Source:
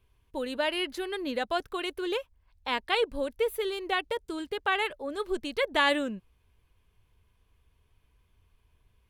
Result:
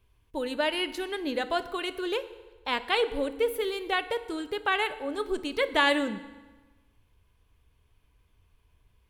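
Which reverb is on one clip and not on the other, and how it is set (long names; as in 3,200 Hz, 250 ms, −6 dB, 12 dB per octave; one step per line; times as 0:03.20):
feedback delay network reverb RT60 1.3 s, low-frequency decay 1×, high-frequency decay 0.8×, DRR 11.5 dB
level +1 dB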